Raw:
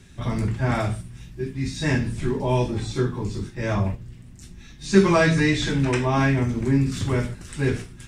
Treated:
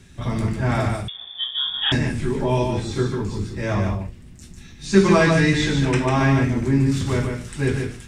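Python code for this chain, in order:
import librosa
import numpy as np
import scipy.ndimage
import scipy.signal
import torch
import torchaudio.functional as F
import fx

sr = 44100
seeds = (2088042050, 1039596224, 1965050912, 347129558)

y = x + 10.0 ** (-5.0 / 20.0) * np.pad(x, (int(147 * sr / 1000.0), 0))[:len(x)]
y = fx.freq_invert(y, sr, carrier_hz=3500, at=(1.08, 1.92))
y = y * librosa.db_to_amplitude(1.0)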